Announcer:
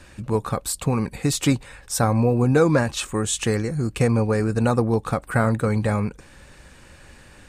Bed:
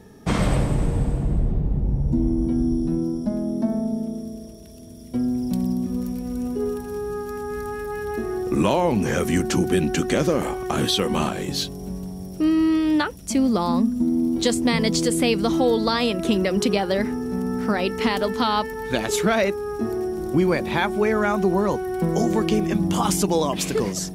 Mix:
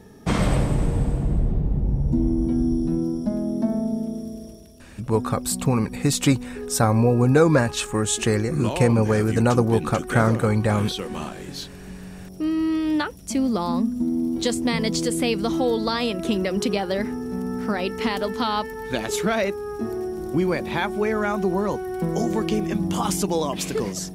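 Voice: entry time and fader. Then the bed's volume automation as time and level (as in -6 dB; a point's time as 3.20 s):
4.80 s, +1.0 dB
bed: 4.52 s 0 dB
4.85 s -8.5 dB
11.66 s -8.5 dB
12.91 s -2.5 dB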